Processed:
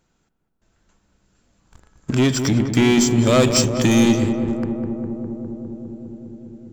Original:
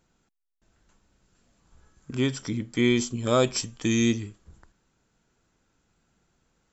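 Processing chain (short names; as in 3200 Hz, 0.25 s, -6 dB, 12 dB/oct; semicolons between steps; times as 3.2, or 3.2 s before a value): sample leveller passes 3; compressor 1.5:1, threshold -36 dBFS, peak gain reduction 8 dB; darkening echo 0.203 s, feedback 84%, low-pass 1500 Hz, level -7.5 dB; gain +8 dB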